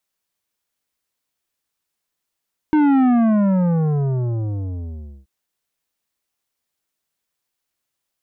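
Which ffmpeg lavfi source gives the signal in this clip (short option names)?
-f lavfi -i "aevalsrc='0.224*clip((2.53-t)/2.23,0,1)*tanh(3.55*sin(2*PI*310*2.53/log(65/310)*(exp(log(65/310)*t/2.53)-1)))/tanh(3.55)':d=2.53:s=44100"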